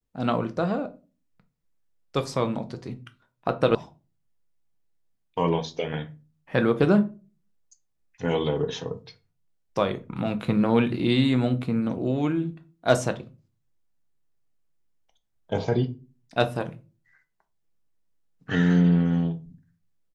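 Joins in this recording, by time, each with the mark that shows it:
0:03.75: cut off before it has died away

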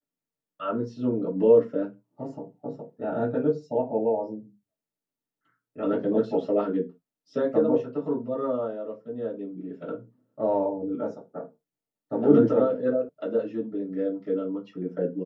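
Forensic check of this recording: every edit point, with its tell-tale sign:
0:13.09: cut off before it has died away

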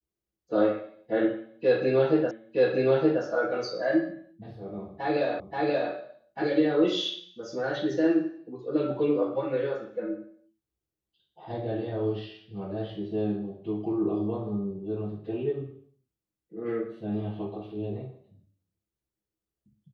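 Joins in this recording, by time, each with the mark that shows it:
0:02.31: the same again, the last 0.92 s
0:05.40: the same again, the last 0.53 s

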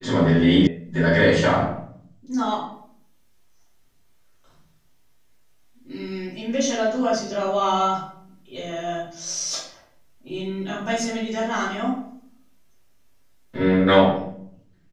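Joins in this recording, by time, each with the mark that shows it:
0:00.67: cut off before it has died away

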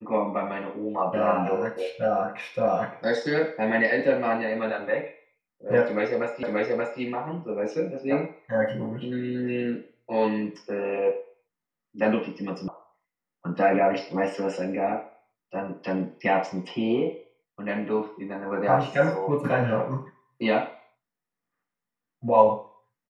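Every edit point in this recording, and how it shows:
0:06.43: the same again, the last 0.58 s
0:12.68: cut off before it has died away

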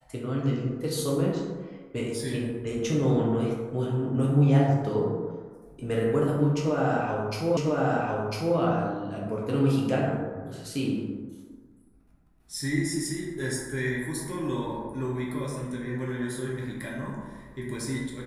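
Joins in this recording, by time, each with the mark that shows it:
0:07.57: the same again, the last 1 s

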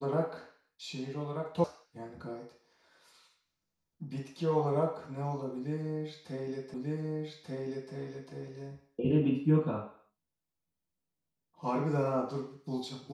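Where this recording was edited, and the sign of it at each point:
0:01.64: cut off before it has died away
0:06.74: the same again, the last 1.19 s

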